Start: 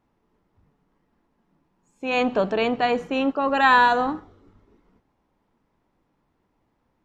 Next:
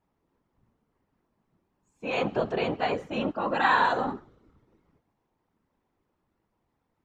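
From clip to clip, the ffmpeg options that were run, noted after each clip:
-af "afftfilt=real='hypot(re,im)*cos(2*PI*random(0))':imag='hypot(re,im)*sin(2*PI*random(1))':win_size=512:overlap=0.75"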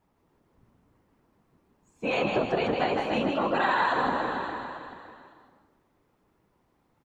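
-filter_complex "[0:a]asplit=2[s0][s1];[s1]aecho=0:1:280|560|840|1120|1400:0.251|0.113|0.0509|0.0229|0.0103[s2];[s0][s2]amix=inputs=2:normalize=0,acompressor=threshold=0.0316:ratio=4,asplit=2[s3][s4];[s4]asplit=4[s5][s6][s7][s8];[s5]adelay=157,afreqshift=55,volume=0.631[s9];[s6]adelay=314,afreqshift=110,volume=0.202[s10];[s7]adelay=471,afreqshift=165,volume=0.0646[s11];[s8]adelay=628,afreqshift=220,volume=0.0207[s12];[s9][s10][s11][s12]amix=inputs=4:normalize=0[s13];[s3][s13]amix=inputs=2:normalize=0,volume=1.88"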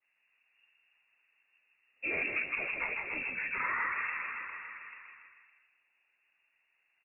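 -af "highpass=f=100:p=1,lowpass=f=2500:t=q:w=0.5098,lowpass=f=2500:t=q:w=0.6013,lowpass=f=2500:t=q:w=0.9,lowpass=f=2500:t=q:w=2.563,afreqshift=-2900,adynamicequalizer=threshold=0.0112:dfrequency=1700:dqfactor=0.7:tfrequency=1700:tqfactor=0.7:attack=5:release=100:ratio=0.375:range=3.5:mode=cutabove:tftype=highshelf,volume=0.562"

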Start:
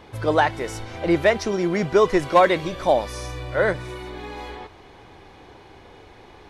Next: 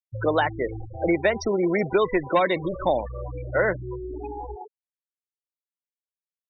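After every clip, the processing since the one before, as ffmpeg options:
-filter_complex "[0:a]afftfilt=real='re*gte(hypot(re,im),0.0708)':imag='im*gte(hypot(re,im),0.0708)':win_size=1024:overlap=0.75,acrossover=split=290|1900[s0][s1][s2];[s0]acompressor=threshold=0.0158:ratio=4[s3];[s1]acompressor=threshold=0.0562:ratio=4[s4];[s2]acompressor=threshold=0.02:ratio=4[s5];[s3][s4][s5]amix=inputs=3:normalize=0,volume=1.58"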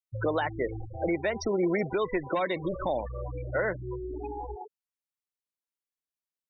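-af "alimiter=limit=0.158:level=0:latency=1:release=190,volume=0.75"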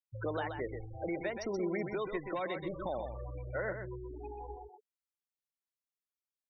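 -af "aecho=1:1:128:0.447,volume=0.376"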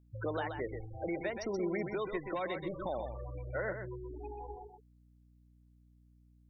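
-af "aeval=exprs='val(0)+0.000794*(sin(2*PI*60*n/s)+sin(2*PI*2*60*n/s)/2+sin(2*PI*3*60*n/s)/3+sin(2*PI*4*60*n/s)/4+sin(2*PI*5*60*n/s)/5)':c=same"

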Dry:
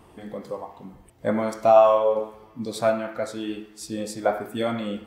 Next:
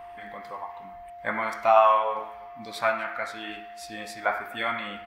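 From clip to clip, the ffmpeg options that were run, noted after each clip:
-af "equalizer=f=125:t=o:w=1:g=-11,equalizer=f=250:t=o:w=1:g=-8,equalizer=f=500:t=o:w=1:g=-11,equalizer=f=1000:t=o:w=1:g=6,equalizer=f=2000:t=o:w=1:g=11,equalizer=f=8000:t=o:w=1:g=-8,aecho=1:1:251:0.0708,aeval=exprs='val(0)+0.0112*sin(2*PI*700*n/s)':c=same,volume=0.841"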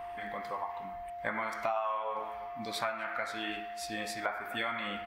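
-af "acompressor=threshold=0.0251:ratio=6,volume=1.12"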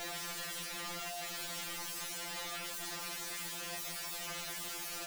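-af "alimiter=level_in=1.19:limit=0.0631:level=0:latency=1:release=230,volume=0.841,aeval=exprs='(mod(126*val(0)+1,2)-1)/126':c=same,afftfilt=real='re*2.83*eq(mod(b,8),0)':imag='im*2.83*eq(mod(b,8),0)':win_size=2048:overlap=0.75,volume=2.24"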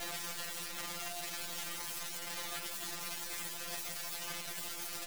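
-af "acrusher=bits=7:dc=4:mix=0:aa=0.000001,volume=1.12"

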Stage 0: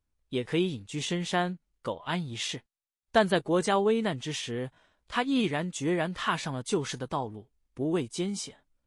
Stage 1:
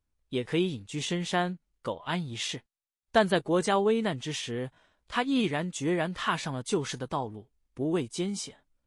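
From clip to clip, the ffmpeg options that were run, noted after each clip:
-af anull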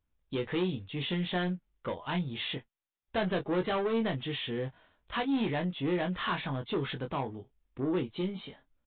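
-filter_complex "[0:a]aresample=8000,asoftclip=type=tanh:threshold=0.0447,aresample=44100,asplit=2[s0][s1];[s1]adelay=22,volume=0.501[s2];[s0][s2]amix=inputs=2:normalize=0"

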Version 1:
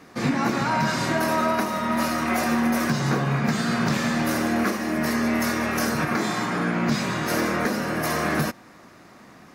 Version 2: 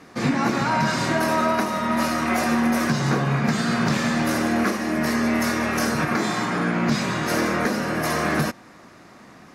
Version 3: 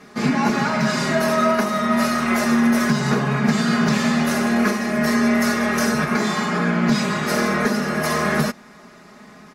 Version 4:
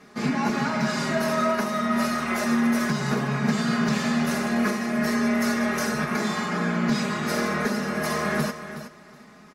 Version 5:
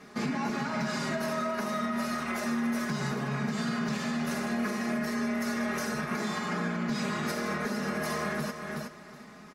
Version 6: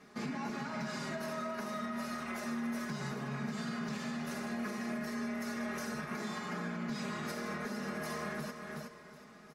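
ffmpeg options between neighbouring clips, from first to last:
-af "lowpass=12000,volume=1.19"
-af "aecho=1:1:4.8:0.83"
-af "aecho=1:1:368|736:0.266|0.0452,volume=0.531"
-af "alimiter=limit=0.075:level=0:latency=1:release=266"
-af "aecho=1:1:734|1468|2202|2936:0.112|0.0606|0.0327|0.0177,volume=0.422"

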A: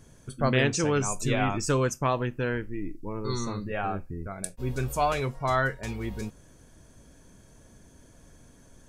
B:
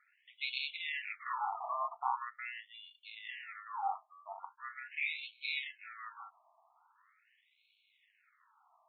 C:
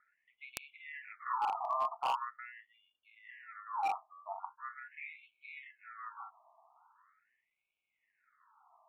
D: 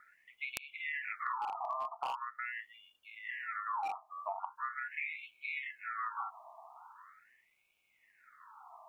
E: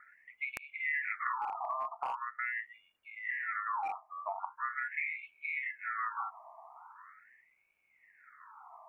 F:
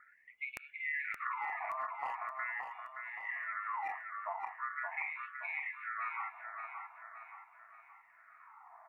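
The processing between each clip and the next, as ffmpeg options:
-af "acrusher=samples=28:mix=1:aa=0.000001,afftfilt=real='re*between(b*sr/1024,870*pow(3100/870,0.5+0.5*sin(2*PI*0.42*pts/sr))/1.41,870*pow(3100/870,0.5+0.5*sin(2*PI*0.42*pts/sr))*1.41)':imag='im*between(b*sr/1024,870*pow(3100/870,0.5+0.5*sin(2*PI*0.42*pts/sr))/1.41,870*pow(3100/870,0.5+0.5*sin(2*PI*0.42*pts/sr))*1.41)':win_size=1024:overlap=0.75,volume=0.891"
-filter_complex "[0:a]acrossover=split=1100|1500[s0][s1][s2];[s0]aeval=exprs='0.0211*(abs(mod(val(0)/0.0211+3,4)-2)-1)':c=same[s3];[s2]acrusher=bits=3:mix=0:aa=0.000001[s4];[s3][s1][s4]amix=inputs=3:normalize=0,volume=1.58"
-af "acompressor=threshold=0.00501:ratio=20,volume=3.76"
-af "highshelf=f=2600:t=q:w=3:g=-7.5"
-af "aecho=1:1:573|1146|1719|2292|2865|3438:0.501|0.231|0.106|0.0488|0.0224|0.0103,volume=0.668"

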